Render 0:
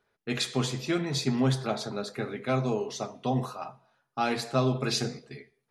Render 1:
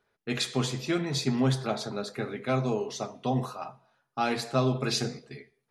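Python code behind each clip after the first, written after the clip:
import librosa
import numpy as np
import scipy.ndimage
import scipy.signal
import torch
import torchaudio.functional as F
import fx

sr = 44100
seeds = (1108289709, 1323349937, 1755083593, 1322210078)

y = x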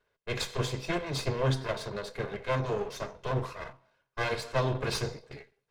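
y = fx.lower_of_two(x, sr, delay_ms=1.9)
y = fx.high_shelf(y, sr, hz=7800.0, db=-10.0)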